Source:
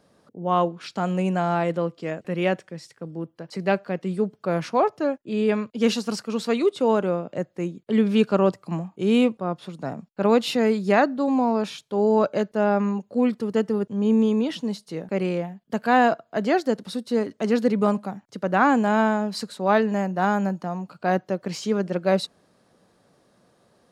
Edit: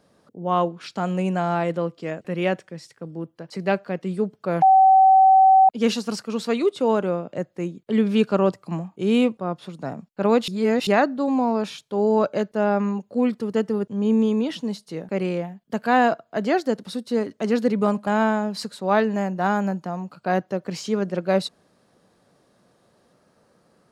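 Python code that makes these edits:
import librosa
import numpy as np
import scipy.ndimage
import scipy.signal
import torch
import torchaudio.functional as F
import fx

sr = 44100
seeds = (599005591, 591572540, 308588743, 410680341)

y = fx.edit(x, sr, fx.bleep(start_s=4.62, length_s=1.07, hz=765.0, db=-10.0),
    fx.reverse_span(start_s=10.48, length_s=0.39),
    fx.cut(start_s=18.07, length_s=0.78), tone=tone)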